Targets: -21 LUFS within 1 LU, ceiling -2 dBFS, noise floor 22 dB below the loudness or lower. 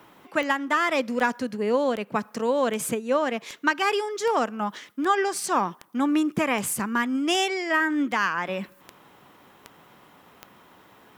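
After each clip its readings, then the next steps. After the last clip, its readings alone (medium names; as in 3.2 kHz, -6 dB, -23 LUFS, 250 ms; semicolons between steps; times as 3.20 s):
clicks found 14; loudness -25.0 LUFS; peak level -8.5 dBFS; loudness target -21.0 LUFS
-> de-click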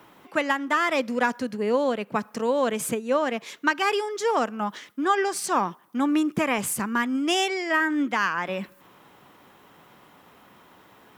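clicks found 0; loudness -25.0 LUFS; peak level -8.5 dBFS; loudness target -21.0 LUFS
-> trim +4 dB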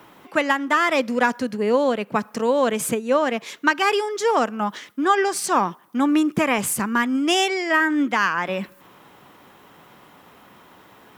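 loudness -21.0 LUFS; peak level -4.5 dBFS; noise floor -51 dBFS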